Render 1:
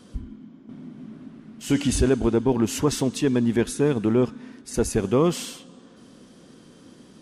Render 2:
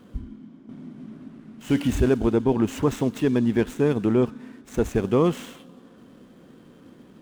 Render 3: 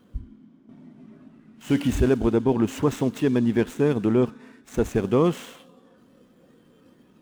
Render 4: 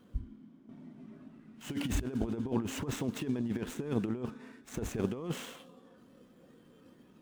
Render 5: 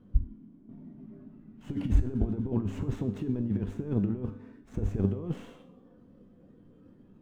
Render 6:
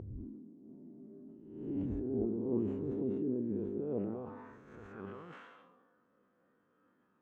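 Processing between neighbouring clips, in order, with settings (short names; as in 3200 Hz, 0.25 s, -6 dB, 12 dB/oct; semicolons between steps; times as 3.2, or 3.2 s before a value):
median filter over 9 samples
spectral noise reduction 7 dB
negative-ratio compressor -24 dBFS, ratio -0.5; gain -8 dB
tilt -4 dB/oct; resonator 99 Hz, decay 0.53 s, harmonics all, mix 70%; gain +3 dB
spectral swells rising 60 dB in 0.86 s; band-pass sweep 380 Hz -> 1400 Hz, 3.7–4.7; sustainer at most 37 dB/s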